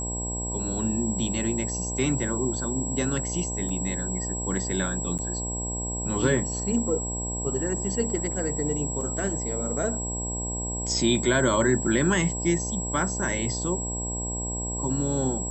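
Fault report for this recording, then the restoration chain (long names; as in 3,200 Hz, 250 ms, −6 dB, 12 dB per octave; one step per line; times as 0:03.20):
mains buzz 60 Hz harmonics 17 −33 dBFS
whistle 7,700 Hz −31 dBFS
0:03.69: drop-out 3.4 ms
0:05.18–0:05.19: drop-out 7.9 ms
0:09.01: drop-out 3.2 ms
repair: hum removal 60 Hz, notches 17
notch filter 7,700 Hz, Q 30
repair the gap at 0:03.69, 3.4 ms
repair the gap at 0:05.18, 7.9 ms
repair the gap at 0:09.01, 3.2 ms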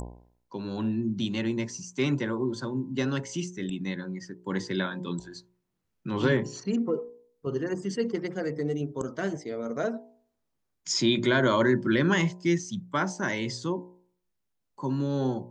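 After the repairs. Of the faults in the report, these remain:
none of them is left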